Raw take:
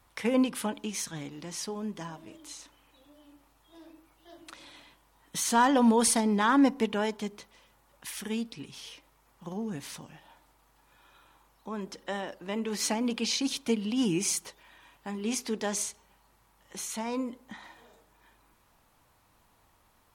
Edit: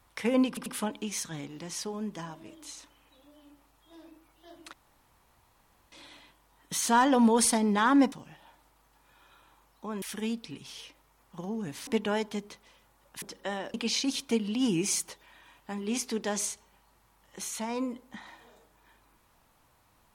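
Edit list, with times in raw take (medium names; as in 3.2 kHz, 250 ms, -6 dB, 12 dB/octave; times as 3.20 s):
0.48 s: stutter 0.09 s, 3 plays
4.55 s: insert room tone 1.19 s
6.75–8.10 s: swap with 9.95–11.85 s
12.37–13.11 s: delete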